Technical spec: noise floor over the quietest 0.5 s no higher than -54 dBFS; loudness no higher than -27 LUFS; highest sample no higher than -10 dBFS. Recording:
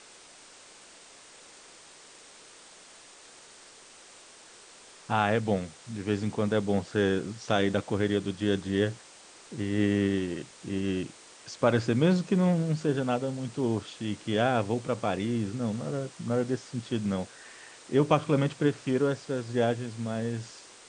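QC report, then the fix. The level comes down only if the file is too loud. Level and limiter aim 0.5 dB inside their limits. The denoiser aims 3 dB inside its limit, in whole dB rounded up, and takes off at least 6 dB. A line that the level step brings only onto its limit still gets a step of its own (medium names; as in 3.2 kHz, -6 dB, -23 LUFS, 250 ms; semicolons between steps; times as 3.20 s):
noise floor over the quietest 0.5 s -52 dBFS: fail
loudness -29.0 LUFS: pass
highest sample -8.5 dBFS: fail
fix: noise reduction 6 dB, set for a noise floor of -52 dBFS; peak limiter -10.5 dBFS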